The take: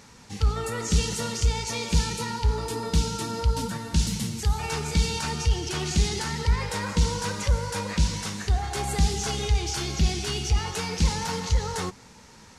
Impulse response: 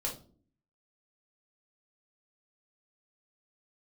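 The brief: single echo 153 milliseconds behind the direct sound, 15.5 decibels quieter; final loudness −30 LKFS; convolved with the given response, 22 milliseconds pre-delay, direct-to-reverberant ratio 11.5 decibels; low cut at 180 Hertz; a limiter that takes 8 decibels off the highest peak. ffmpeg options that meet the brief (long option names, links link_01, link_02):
-filter_complex "[0:a]highpass=180,alimiter=limit=-21.5dB:level=0:latency=1,aecho=1:1:153:0.168,asplit=2[link_01][link_02];[1:a]atrim=start_sample=2205,adelay=22[link_03];[link_02][link_03]afir=irnorm=-1:irlink=0,volume=-14dB[link_04];[link_01][link_04]amix=inputs=2:normalize=0,volume=0.5dB"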